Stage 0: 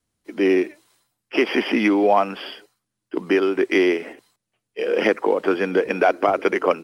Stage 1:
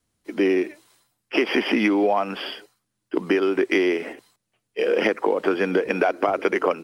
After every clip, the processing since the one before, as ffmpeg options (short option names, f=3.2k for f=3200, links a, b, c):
-af "acompressor=threshold=-19dB:ratio=6,volume=2.5dB"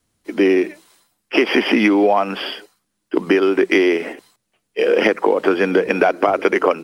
-af "bandreject=f=60:t=h:w=6,bandreject=f=120:t=h:w=6,bandreject=f=180:t=h:w=6,volume=5.5dB"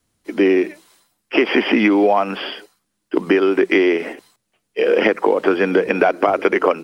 -filter_complex "[0:a]acrossover=split=4100[a][b];[b]acompressor=threshold=-45dB:ratio=4:attack=1:release=60[c];[a][c]amix=inputs=2:normalize=0"